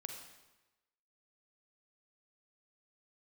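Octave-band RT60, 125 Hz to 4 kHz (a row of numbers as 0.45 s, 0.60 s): 1.1 s, 1.0 s, 1.1 s, 1.1 s, 1.0 s, 0.95 s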